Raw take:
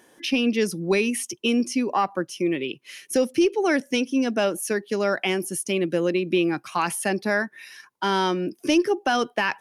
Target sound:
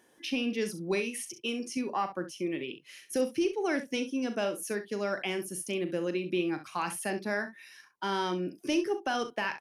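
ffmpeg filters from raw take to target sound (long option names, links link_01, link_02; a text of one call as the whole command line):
ffmpeg -i in.wav -filter_complex "[0:a]asettb=1/sr,asplit=3[link_01][link_02][link_03];[link_01]atrim=end=1.004[link_04];[link_02]atrim=start=1:end=1.77,asetpts=PTS-STARTPTS,afade=type=in:duration=0.004:curve=qsin,afade=type=out:start_time=0.766:duration=0.004:curve=qsin,equalizer=frequency=120:width=0.4:gain=-6.5[link_05];[link_03]atrim=start=1.766[link_06];[link_04][link_05]acrossfade=duration=0.004:curve1=hsin:curve2=qsin[link_07];[link_07][link_06]acrossfade=duration=0.004:curve1=qsin:curve2=hsin,asplit=2[link_08][link_09];[link_09]aecho=0:1:39|66:0.282|0.237[link_10];[link_08][link_10]amix=inputs=2:normalize=0,volume=-9dB" out.wav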